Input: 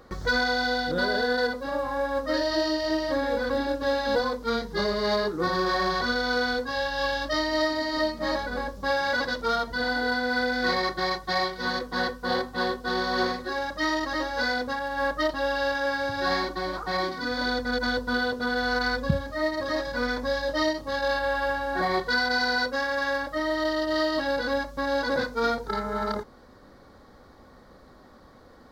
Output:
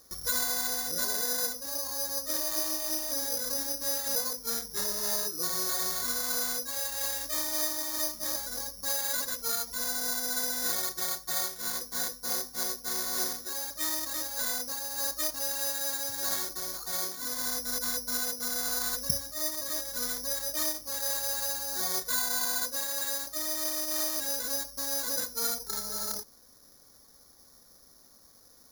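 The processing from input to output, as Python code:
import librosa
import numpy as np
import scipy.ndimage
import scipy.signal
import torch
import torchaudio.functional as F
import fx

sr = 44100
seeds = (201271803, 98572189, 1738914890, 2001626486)

y = fx.ladder_lowpass(x, sr, hz=5600.0, resonance_pct=30)
y = (np.kron(y[::8], np.eye(8)[0]) * 8)[:len(y)]
y = y * 10.0 ** (-8.0 / 20.0)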